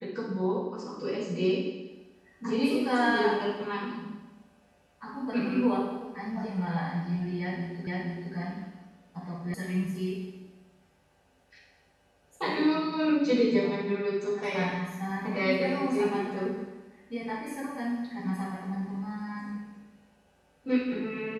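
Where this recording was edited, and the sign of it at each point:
7.87 repeat of the last 0.47 s
9.54 sound cut off

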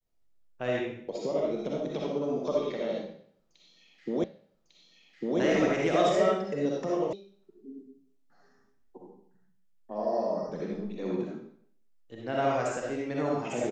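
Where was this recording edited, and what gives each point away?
4.24 repeat of the last 1.15 s
7.13 sound cut off

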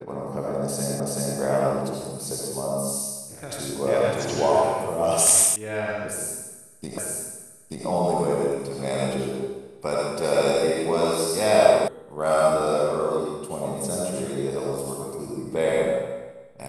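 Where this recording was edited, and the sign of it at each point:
1 repeat of the last 0.38 s
5.56 sound cut off
6.98 repeat of the last 0.88 s
11.88 sound cut off

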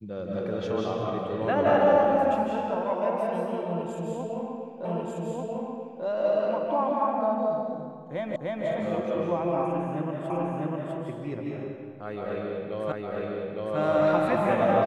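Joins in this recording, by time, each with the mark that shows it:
4.85 repeat of the last 1.19 s
8.36 repeat of the last 0.3 s
10.3 repeat of the last 0.65 s
12.92 repeat of the last 0.86 s

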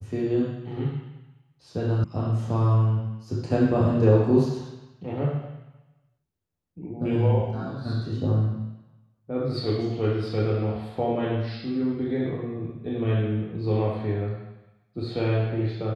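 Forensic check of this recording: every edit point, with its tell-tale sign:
2.04 sound cut off

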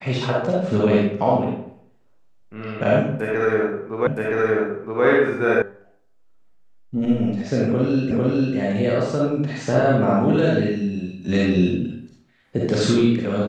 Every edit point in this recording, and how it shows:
4.07 repeat of the last 0.97 s
5.62 sound cut off
8.11 repeat of the last 0.45 s

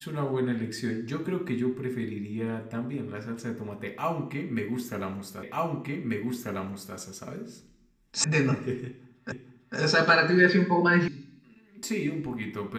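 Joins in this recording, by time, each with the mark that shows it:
5.43 repeat of the last 1.54 s
8.24 sound cut off
9.32 repeat of the last 0.45 s
11.08 sound cut off

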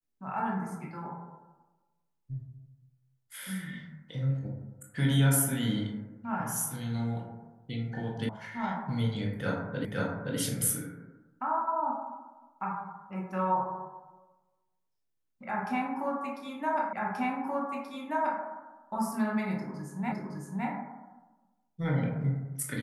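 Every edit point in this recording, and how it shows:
8.29 sound cut off
9.85 repeat of the last 0.52 s
16.93 repeat of the last 1.48 s
20.12 repeat of the last 0.56 s

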